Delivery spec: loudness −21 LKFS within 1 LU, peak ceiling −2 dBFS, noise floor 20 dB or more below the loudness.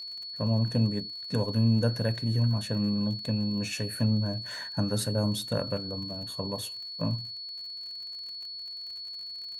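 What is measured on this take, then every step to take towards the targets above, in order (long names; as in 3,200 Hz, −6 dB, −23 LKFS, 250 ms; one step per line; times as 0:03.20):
crackle rate 52 per second; interfering tone 4,400 Hz; level of the tone −37 dBFS; integrated loudness −30.0 LKFS; sample peak −13.5 dBFS; target loudness −21.0 LKFS
→ click removal
notch filter 4,400 Hz, Q 30
level +9 dB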